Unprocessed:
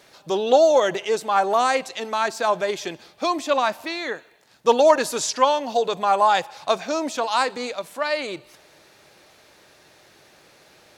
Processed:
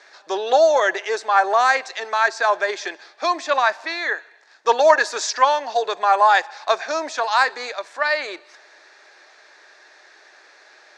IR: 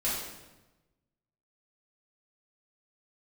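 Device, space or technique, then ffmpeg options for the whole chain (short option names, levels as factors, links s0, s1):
phone speaker on a table: -af "highpass=f=410:w=0.5412,highpass=f=410:w=1.3066,equalizer=f=510:t=q:w=4:g=-7,equalizer=f=1700:t=q:w=4:g=9,equalizer=f=3000:t=q:w=4:g=-7,lowpass=f=6500:w=0.5412,lowpass=f=6500:w=1.3066,volume=1.41"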